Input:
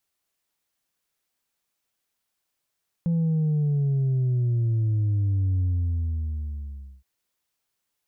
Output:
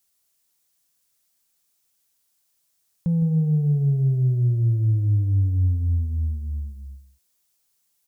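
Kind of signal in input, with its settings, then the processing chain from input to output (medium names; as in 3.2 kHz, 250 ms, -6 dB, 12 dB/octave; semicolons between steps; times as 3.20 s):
sub drop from 170 Hz, over 3.97 s, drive 2 dB, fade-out 1.43 s, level -20.5 dB
tone controls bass +3 dB, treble +11 dB; on a send: delay 162 ms -11 dB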